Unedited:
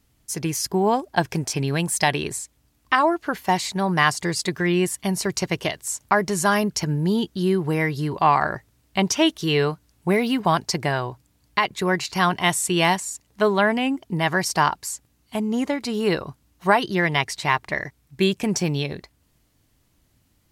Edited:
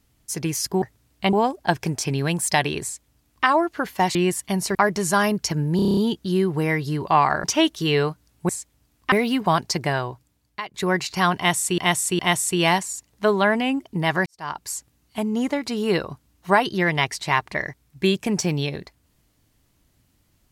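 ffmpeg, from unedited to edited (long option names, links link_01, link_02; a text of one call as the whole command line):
ffmpeg -i in.wav -filter_complex "[0:a]asplit=19[link_01][link_02][link_03][link_04][link_05][link_06][link_07][link_08][link_09][link_10][link_11][link_12][link_13][link_14][link_15][link_16][link_17][link_18][link_19];[link_01]atrim=end=0.822[link_20];[link_02]atrim=start=8.548:end=9.062[link_21];[link_03]atrim=start=0.818:end=3.642[link_22];[link_04]atrim=start=4.698:end=5.302[link_23];[link_05]atrim=start=6.068:end=7.112[link_24];[link_06]atrim=start=7.078:end=7.112[link_25];[link_07]atrim=start=7.078:end=7.112[link_26];[link_08]atrim=start=7.078:end=7.112[link_27];[link_09]atrim=start=7.078:end=7.112[link_28];[link_10]atrim=start=7.078:end=7.112[link_29];[link_11]atrim=start=7.078:end=7.112[link_30];[link_12]atrim=start=7.078:end=8.552[link_31];[link_13]atrim=start=9.058:end=10.112[link_32];[link_14]atrim=start=2.318:end=2.952[link_33];[link_15]atrim=start=10.108:end=11.73,asetpts=PTS-STARTPTS,afade=type=out:start_time=0.852:duration=0.77:silence=0.149624[link_34];[link_16]atrim=start=11.73:end=12.772,asetpts=PTS-STARTPTS,afade=type=in:duration=0.004:curve=hsin:silence=0.149624[link_35];[link_17]atrim=start=12.358:end=12.772[link_36];[link_18]atrim=start=12.358:end=14.43,asetpts=PTS-STARTPTS,afade=type=out:start_time=2.068:duration=0.004:curve=hsin[link_37];[link_19]atrim=start=14.43,asetpts=PTS-STARTPTS,afade=type=in:duration=0.41:curve=qua[link_38];[link_20][link_21]acrossfade=duration=0.004:curve1=hsin:curve2=hsin[link_39];[link_39][link_22]acrossfade=duration=0.004:curve1=hsin:curve2=hsin[link_40];[link_40][link_23]acrossfade=duration=0.004:curve1=hsin:curve2=hsin[link_41];[link_41][link_24]acrossfade=duration=0.004:curve1=hsin:curve2=hsin[link_42];[link_42][link_25]acrossfade=duration=0.004:curve1=hsin:curve2=hsin[link_43];[link_43][link_26]acrossfade=duration=0.004:curve1=hsin:curve2=hsin[link_44];[link_44][link_27]acrossfade=duration=0.004:curve1=hsin:curve2=hsin[link_45];[link_45][link_28]acrossfade=duration=0.004:curve1=hsin:curve2=hsin[link_46];[link_46][link_29]acrossfade=duration=0.004:curve1=hsin:curve2=hsin[link_47];[link_47][link_30]acrossfade=duration=0.004:curve1=hsin:curve2=hsin[link_48];[link_48][link_31]acrossfade=duration=0.004:curve1=hsin:curve2=hsin[link_49];[link_49][link_32]acrossfade=duration=0.004:curve1=hsin:curve2=hsin[link_50];[link_50][link_33]acrossfade=duration=0.004:curve1=hsin:curve2=hsin[link_51];[link_34][link_35]concat=n=2:v=0:a=1[link_52];[link_51][link_52]acrossfade=duration=0.004:curve1=hsin:curve2=hsin[link_53];[link_53][link_36]acrossfade=duration=0.004:curve1=hsin:curve2=hsin[link_54];[link_37][link_38]concat=n=2:v=0:a=1[link_55];[link_54][link_55]acrossfade=duration=0.004:curve1=hsin:curve2=hsin" out.wav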